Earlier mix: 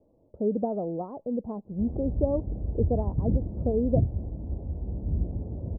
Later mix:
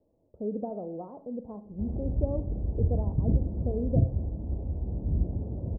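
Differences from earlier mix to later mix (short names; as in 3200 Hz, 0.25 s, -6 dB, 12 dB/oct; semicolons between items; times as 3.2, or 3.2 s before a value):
speech -7.5 dB; reverb: on, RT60 0.45 s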